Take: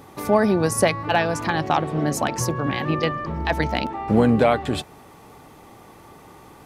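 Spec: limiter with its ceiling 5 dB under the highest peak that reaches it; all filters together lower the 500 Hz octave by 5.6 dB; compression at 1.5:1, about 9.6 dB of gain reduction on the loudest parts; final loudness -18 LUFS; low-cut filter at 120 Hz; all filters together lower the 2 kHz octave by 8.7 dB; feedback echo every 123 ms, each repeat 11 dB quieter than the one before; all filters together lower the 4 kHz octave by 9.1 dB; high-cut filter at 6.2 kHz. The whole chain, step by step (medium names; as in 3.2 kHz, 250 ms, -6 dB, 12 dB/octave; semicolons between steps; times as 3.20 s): high-pass 120 Hz; low-pass 6.2 kHz; peaking EQ 500 Hz -6.5 dB; peaking EQ 2 kHz -9 dB; peaking EQ 4 kHz -8 dB; compression 1.5:1, threshold -43 dBFS; peak limiter -24 dBFS; feedback delay 123 ms, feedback 28%, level -11 dB; trim +17 dB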